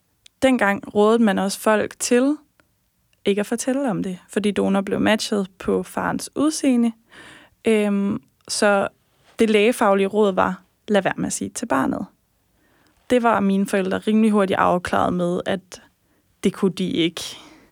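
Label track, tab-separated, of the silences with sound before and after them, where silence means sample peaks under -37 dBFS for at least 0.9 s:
12.060000	13.100000	silence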